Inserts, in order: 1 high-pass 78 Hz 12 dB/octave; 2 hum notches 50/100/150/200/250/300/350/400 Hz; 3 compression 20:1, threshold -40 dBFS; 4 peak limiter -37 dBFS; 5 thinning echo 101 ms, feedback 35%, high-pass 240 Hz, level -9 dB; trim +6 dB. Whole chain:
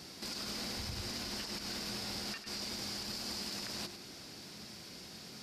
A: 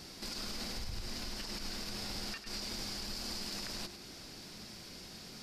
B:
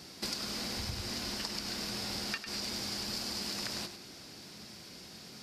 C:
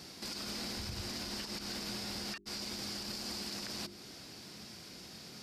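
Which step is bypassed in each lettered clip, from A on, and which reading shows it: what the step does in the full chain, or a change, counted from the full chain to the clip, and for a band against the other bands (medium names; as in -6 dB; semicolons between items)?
1, loudness change -1.0 LU; 4, mean gain reduction 2.0 dB; 5, crest factor change -2.5 dB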